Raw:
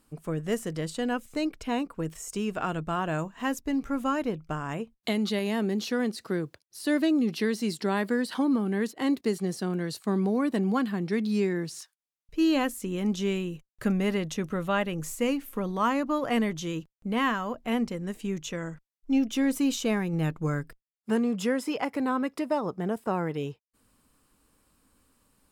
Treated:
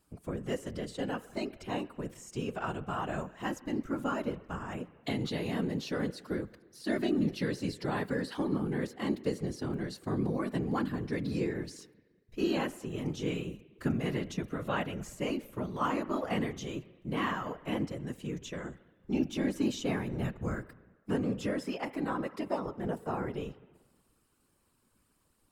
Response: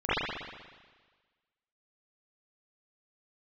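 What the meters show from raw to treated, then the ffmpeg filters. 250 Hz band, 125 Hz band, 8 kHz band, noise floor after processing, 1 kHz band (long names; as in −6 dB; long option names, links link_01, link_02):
−6.5 dB, −3.0 dB, −9.0 dB, −72 dBFS, −5.5 dB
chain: -filter_complex "[0:a]asplit=2[link_01][link_02];[1:a]atrim=start_sample=2205[link_03];[link_02][link_03]afir=irnorm=-1:irlink=0,volume=-31.5dB[link_04];[link_01][link_04]amix=inputs=2:normalize=0,acrossover=split=7000[link_05][link_06];[link_06]acompressor=threshold=-50dB:ratio=4:attack=1:release=60[link_07];[link_05][link_07]amix=inputs=2:normalize=0,afftfilt=real='hypot(re,im)*cos(2*PI*random(0))':imag='hypot(re,im)*sin(2*PI*random(1))':win_size=512:overlap=0.75"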